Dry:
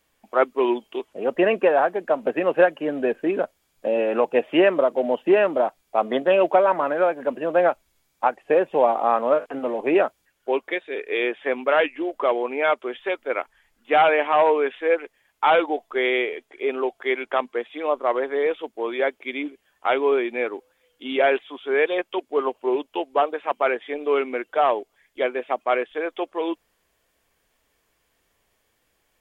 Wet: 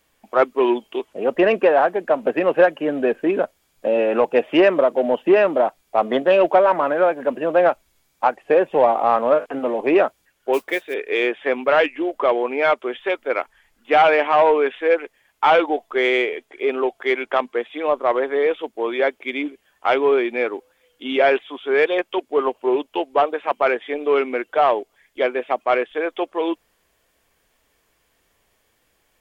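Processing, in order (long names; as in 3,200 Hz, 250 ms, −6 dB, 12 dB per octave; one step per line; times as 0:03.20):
0:10.53–0:10.94: noise that follows the level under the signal 22 dB
in parallel at −5 dB: soft clipping −15 dBFS, distortion −14 dB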